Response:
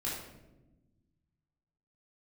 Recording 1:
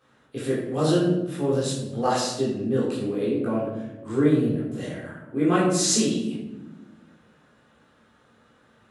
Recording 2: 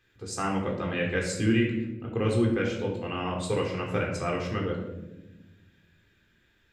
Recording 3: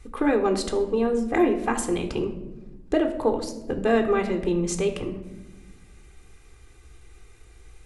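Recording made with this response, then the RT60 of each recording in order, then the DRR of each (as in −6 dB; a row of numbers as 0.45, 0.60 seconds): 1; 1.0, 1.0, 1.1 seconds; −6.5, 0.0, 7.0 decibels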